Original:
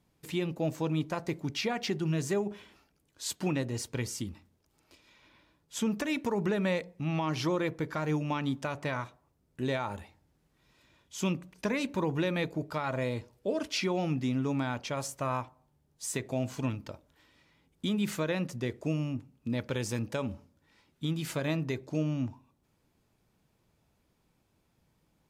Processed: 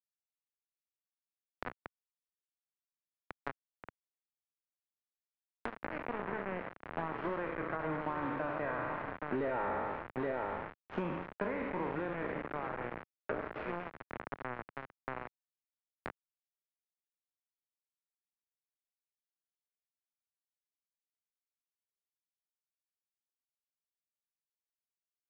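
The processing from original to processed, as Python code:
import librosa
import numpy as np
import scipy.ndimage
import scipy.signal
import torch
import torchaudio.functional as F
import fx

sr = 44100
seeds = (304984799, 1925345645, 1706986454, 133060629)

p1 = fx.spec_trails(x, sr, decay_s=1.58)
p2 = fx.doppler_pass(p1, sr, speed_mps=10, closest_m=4.0, pass_at_s=9.68)
p3 = fx.highpass(p2, sr, hz=710.0, slope=6)
p4 = fx.tilt_shelf(p3, sr, db=4.0, hz=910.0)
p5 = p4 + fx.echo_single(p4, sr, ms=826, db=-9.0, dry=0)
p6 = np.where(np.abs(p5) >= 10.0 ** (-45.0 / 20.0), p5, 0.0)
p7 = fx.leveller(p6, sr, passes=5)
p8 = scipy.signal.sosfilt(scipy.signal.butter(4, 1900.0, 'lowpass', fs=sr, output='sos'), p7)
p9 = fx.band_squash(p8, sr, depth_pct=100)
y = F.gain(torch.from_numpy(p9), -7.0).numpy()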